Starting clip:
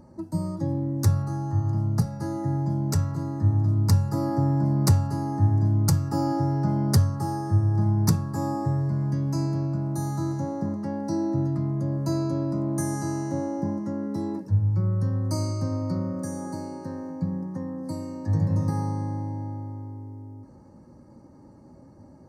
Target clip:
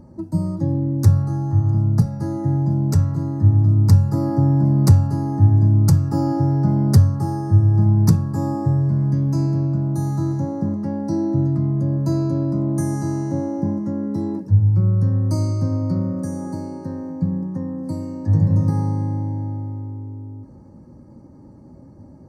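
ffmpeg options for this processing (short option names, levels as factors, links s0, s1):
-af "lowshelf=f=460:g=9,volume=0.891"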